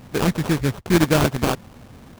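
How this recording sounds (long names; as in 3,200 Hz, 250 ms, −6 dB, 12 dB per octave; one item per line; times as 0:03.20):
a buzz of ramps at a fixed pitch in blocks of 8 samples
phaser sweep stages 4, 2.1 Hz, lowest notch 630–1,400 Hz
aliases and images of a low sample rate 2,000 Hz, jitter 20%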